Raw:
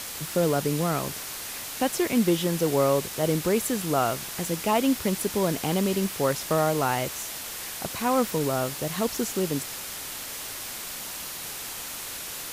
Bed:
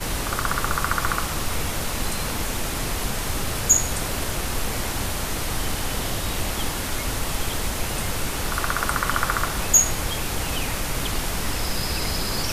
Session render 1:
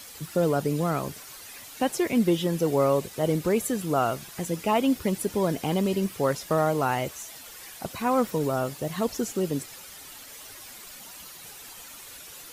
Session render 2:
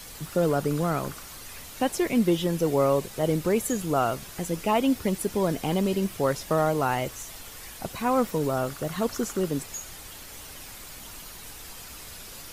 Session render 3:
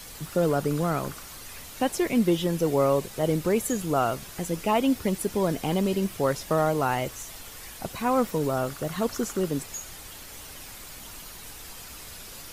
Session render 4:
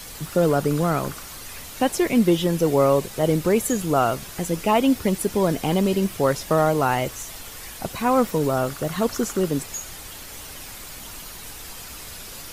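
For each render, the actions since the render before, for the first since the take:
broadband denoise 11 dB, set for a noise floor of −36 dBFS
mix in bed −22 dB
no processing that can be heard
level +4.5 dB

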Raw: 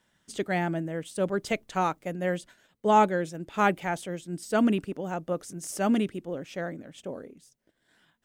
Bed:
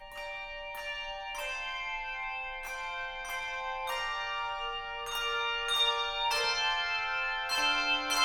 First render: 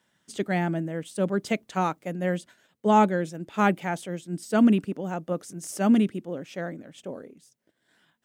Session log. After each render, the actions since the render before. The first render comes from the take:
dynamic equaliser 210 Hz, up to +6 dB, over −40 dBFS, Q 1.7
high-pass filter 100 Hz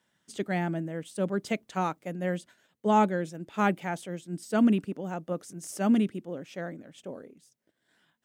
level −3.5 dB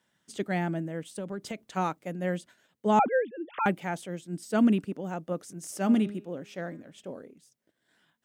0:01.15–0:01.65: downward compressor 10 to 1, threshold −31 dBFS
0:02.99–0:03.66: three sine waves on the formant tracks
0:05.62–0:07.13: hum removal 204.3 Hz, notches 27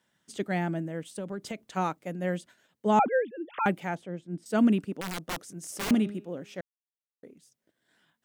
0:03.95–0:04.46: low-pass filter 1,200 Hz 6 dB per octave
0:05.01–0:05.91: wrap-around overflow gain 27.5 dB
0:06.61–0:07.23: silence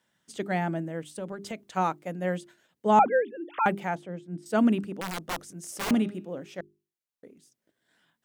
dynamic equaliser 890 Hz, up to +4 dB, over −41 dBFS, Q 0.91
mains-hum notches 50/100/150/200/250/300/350/400 Hz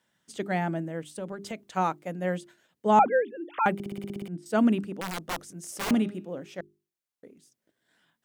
0:03.74: stutter in place 0.06 s, 9 plays

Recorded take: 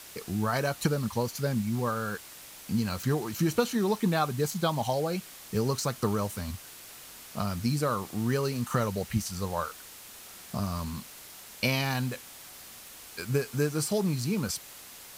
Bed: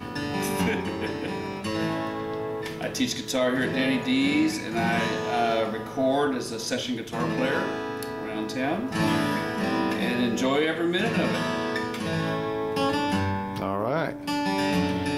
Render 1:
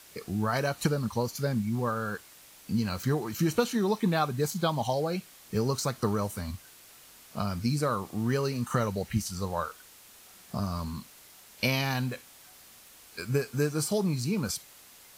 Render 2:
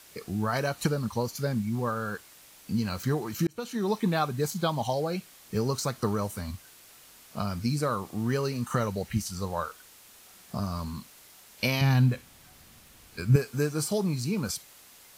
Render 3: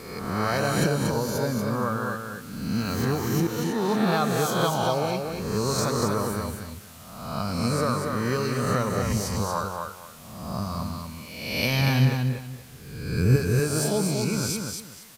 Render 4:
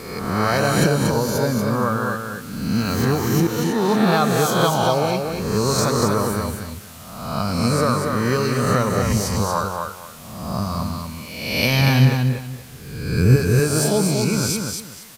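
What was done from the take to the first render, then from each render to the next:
noise reduction from a noise print 6 dB
0:03.47–0:03.91: fade in; 0:11.81–0:13.36: bass and treble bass +12 dB, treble −3 dB
peak hold with a rise ahead of every peak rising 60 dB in 1.08 s; on a send: repeating echo 236 ms, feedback 23%, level −4.5 dB
level +6 dB; brickwall limiter −3 dBFS, peak gain reduction 1.5 dB

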